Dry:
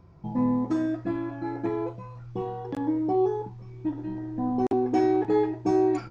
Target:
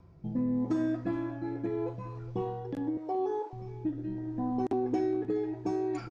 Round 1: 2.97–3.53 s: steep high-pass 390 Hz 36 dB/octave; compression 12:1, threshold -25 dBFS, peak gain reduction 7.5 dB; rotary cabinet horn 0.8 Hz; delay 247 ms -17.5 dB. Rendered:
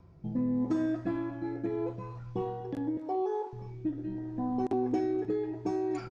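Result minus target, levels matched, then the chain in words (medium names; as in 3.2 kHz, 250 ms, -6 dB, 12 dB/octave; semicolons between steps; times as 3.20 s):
echo 170 ms early
2.97–3.53 s: steep high-pass 390 Hz 36 dB/octave; compression 12:1, threshold -25 dBFS, peak gain reduction 7.5 dB; rotary cabinet horn 0.8 Hz; delay 417 ms -17.5 dB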